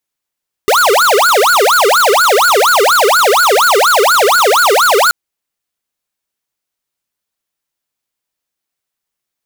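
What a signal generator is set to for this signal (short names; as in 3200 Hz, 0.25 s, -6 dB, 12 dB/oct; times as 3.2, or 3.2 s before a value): siren wail 393–1470 Hz 4.2/s square -9 dBFS 4.43 s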